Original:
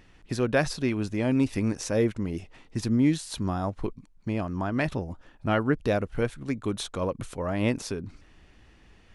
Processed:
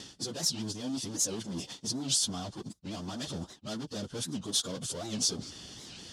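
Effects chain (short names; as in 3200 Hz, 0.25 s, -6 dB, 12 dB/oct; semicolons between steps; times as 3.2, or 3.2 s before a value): reverse; compressor 6:1, threshold -38 dBFS, peak gain reduction 18.5 dB; reverse; gate with hold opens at -52 dBFS; sample leveller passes 3; soft clip -32 dBFS, distortion -15 dB; resonant high shelf 2900 Hz +7 dB, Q 3; notch 3900 Hz, Q 7.7; plain phase-vocoder stretch 0.67×; BPF 180–7900 Hz; tone controls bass +8 dB, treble +10 dB; record warp 78 rpm, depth 250 cents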